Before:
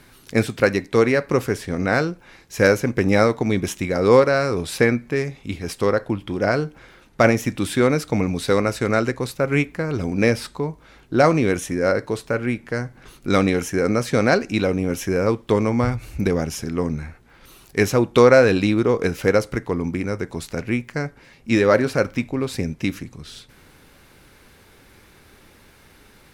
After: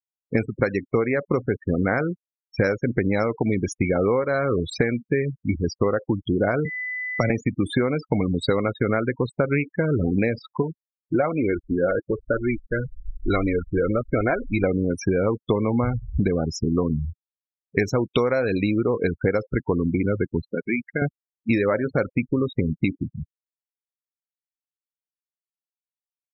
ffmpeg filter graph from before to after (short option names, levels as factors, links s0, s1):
-filter_complex "[0:a]asettb=1/sr,asplit=3[s0][s1][s2];[s0]atrim=end=6.654[s3];[s1]atrim=start=6.65:end=7.3,asetpts=PTS-STARTPTS,afade=t=in:d=0.004:c=qsin,afade=t=out:st=0.646:d=0.004:c=qsin,acrossover=split=180|3000[s4][s5][s6];[s5]acompressor=threshold=0.0631:ratio=10:attack=3.2:release=140:knee=2.83:detection=peak[s7];[s4][s7][s6]amix=inputs=3:normalize=0,equalizer=f=560:t=o:w=0.65:g=3.5,aeval=exprs='val(0)+0.02*sin(2*PI*2000*n/s)':c=same[s8];[s2]atrim=start=7.296[s9];[s3][s8]acrossfade=d=0.004:c1=hsin:c2=qsin[s10];[s10][s9]acrossfade=d=0.004:c1=qsin:c2=hsin,asettb=1/sr,asplit=3[s11][s12][s13];[s11]atrim=end=10.624[s14];[s12]atrim=start=10.62:end=14.64,asetpts=PTS-STARTPTS,afade=t=in:d=0.004:c=qsin,afade=t=out:st=4.016:d=0.004:c=qsin,asubboost=boost=10.5:cutoff=57,acrossover=split=3700[s15][s16];[s16]acompressor=threshold=0.0112:ratio=4:attack=1:release=60[s17];[s15][s17]amix=inputs=2:normalize=0,flanger=delay=2.8:depth=3.5:regen=49:speed=1.1:shape=sinusoidal[s18];[s13]atrim=start=14.636[s19];[s14][s18]acrossfade=d=0.004:c1=hsin:c2=qsin[s20];[s20][s19]acrossfade=d=0.004:c1=qsin:c2=hsin,asettb=1/sr,asplit=3[s21][s22][s23];[s21]atrim=end=20.464[s24];[s22]atrim=start=20.46:end=21.02,asetpts=PTS-STARTPTS,afade=t=in:d=0.004:c=qsin,afade=t=out:st=0.556:d=0.004:c=qsin,highpass=190,lowpass=5500,equalizer=f=2700:t=o:w=1.9:g=5,acompressor=threshold=0.0316:ratio=2:attack=3.2:release=140:knee=1:detection=peak[s25];[s23]atrim=start=21.016[s26];[s24][s25]acrossfade=d=0.004:c1=hsin:c2=qsin[s27];[s27][s26]acrossfade=d=0.004:c1=qsin:c2=hsin,afftfilt=real='re*gte(hypot(re,im),0.0794)':imag='im*gte(hypot(re,im),0.0794)':win_size=1024:overlap=0.75,acompressor=threshold=0.0562:ratio=20,afftfilt=real='re*gte(hypot(re,im),0.00355)':imag='im*gte(hypot(re,im),0.00355)':win_size=1024:overlap=0.75,volume=2.37"